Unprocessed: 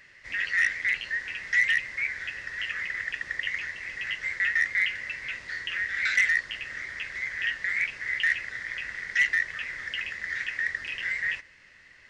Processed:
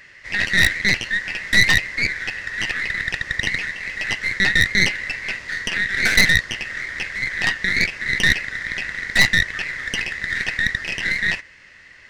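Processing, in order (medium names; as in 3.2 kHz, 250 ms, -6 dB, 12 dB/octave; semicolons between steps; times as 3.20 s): tracing distortion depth 0.19 ms; trim +8 dB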